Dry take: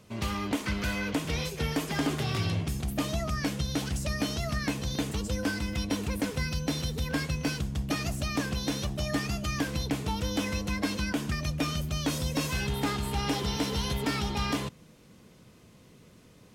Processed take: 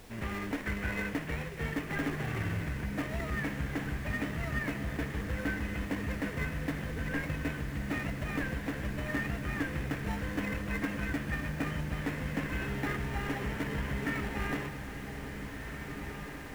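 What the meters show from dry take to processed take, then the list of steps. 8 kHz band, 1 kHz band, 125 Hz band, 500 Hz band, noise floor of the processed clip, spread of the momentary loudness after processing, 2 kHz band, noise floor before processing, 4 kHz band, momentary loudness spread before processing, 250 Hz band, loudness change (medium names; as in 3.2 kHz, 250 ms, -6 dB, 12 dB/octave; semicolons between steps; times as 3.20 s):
-13.0 dB, -5.0 dB, -4.0 dB, -4.0 dB, -42 dBFS, 4 LU, +0.5 dB, -56 dBFS, -12.5 dB, 2 LU, -4.0 dB, -4.5 dB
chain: CVSD coder 16 kbps; peaking EQ 1.8 kHz +11 dB 0.6 oct; added noise pink -47 dBFS; in parallel at -5 dB: sample-rate reducer 1.6 kHz, jitter 0%; on the sum: echo that smears into a reverb 1746 ms, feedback 63%, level -8 dB; trim -8 dB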